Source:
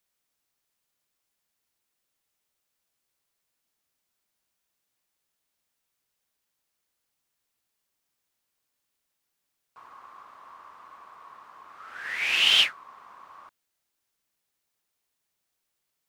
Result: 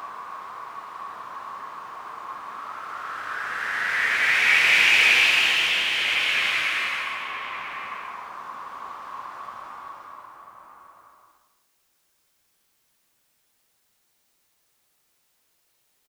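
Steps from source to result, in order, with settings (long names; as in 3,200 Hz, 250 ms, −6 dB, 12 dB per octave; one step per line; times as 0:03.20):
compressor whose output falls as the input rises −26 dBFS, ratio −0.5
extreme stretch with random phases 4×, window 0.50 s, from 0:11.04
slap from a distant wall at 170 metres, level −6 dB
level +7.5 dB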